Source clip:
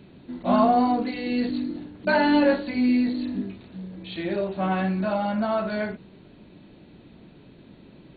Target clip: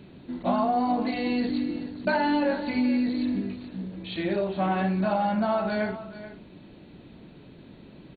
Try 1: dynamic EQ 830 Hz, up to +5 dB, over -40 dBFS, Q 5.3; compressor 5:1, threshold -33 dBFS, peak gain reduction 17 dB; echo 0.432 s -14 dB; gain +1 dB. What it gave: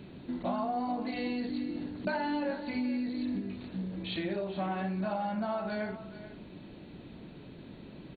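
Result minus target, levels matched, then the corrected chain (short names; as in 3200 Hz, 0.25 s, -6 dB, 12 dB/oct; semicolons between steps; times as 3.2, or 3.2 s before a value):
compressor: peak gain reduction +8.5 dB
dynamic EQ 830 Hz, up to +5 dB, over -40 dBFS, Q 5.3; compressor 5:1, threshold -22.5 dBFS, peak gain reduction 8.5 dB; echo 0.432 s -14 dB; gain +1 dB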